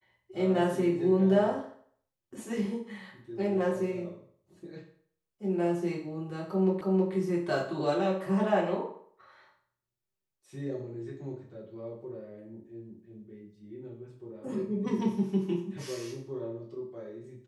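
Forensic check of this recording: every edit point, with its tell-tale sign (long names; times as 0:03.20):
0:06.81: the same again, the last 0.32 s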